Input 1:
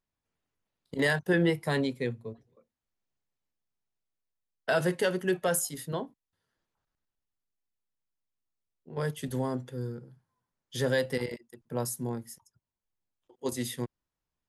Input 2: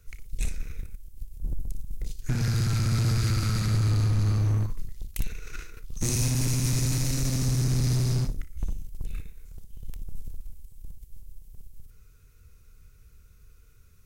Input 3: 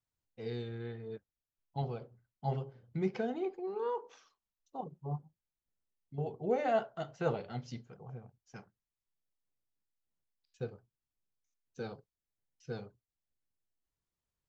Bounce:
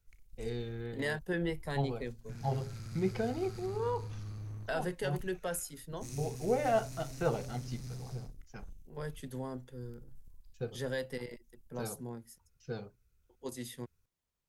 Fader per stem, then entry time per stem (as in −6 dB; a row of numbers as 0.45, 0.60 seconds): −9.0, −19.0, +1.0 decibels; 0.00, 0.00, 0.00 seconds